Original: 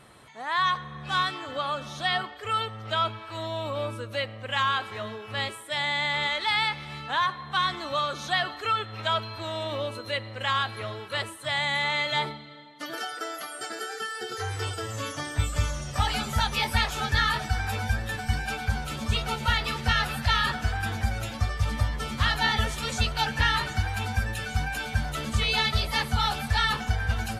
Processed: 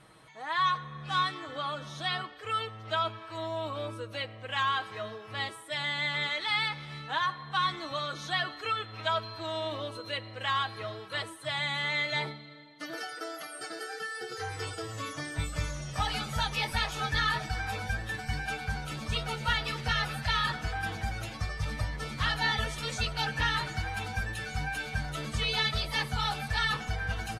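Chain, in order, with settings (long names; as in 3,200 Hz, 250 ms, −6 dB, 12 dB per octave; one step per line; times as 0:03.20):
low-pass filter 11,000 Hz 12 dB per octave
notch filter 7,300 Hz, Q 17
comb filter 6.3 ms, depth 55%
level −5 dB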